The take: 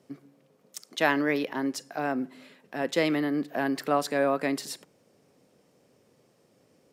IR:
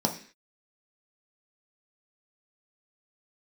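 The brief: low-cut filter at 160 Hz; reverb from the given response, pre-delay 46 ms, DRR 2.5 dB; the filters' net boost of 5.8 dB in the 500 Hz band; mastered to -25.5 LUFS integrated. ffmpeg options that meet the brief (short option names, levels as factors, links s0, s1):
-filter_complex "[0:a]highpass=160,equalizer=f=500:t=o:g=7,asplit=2[s0][s1];[1:a]atrim=start_sample=2205,adelay=46[s2];[s1][s2]afir=irnorm=-1:irlink=0,volume=0.251[s3];[s0][s3]amix=inputs=2:normalize=0,volume=0.631"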